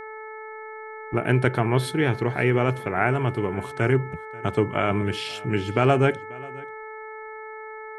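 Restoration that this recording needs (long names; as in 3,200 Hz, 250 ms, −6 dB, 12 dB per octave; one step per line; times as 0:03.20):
hum removal 435.6 Hz, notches 5
echo removal 537 ms −22 dB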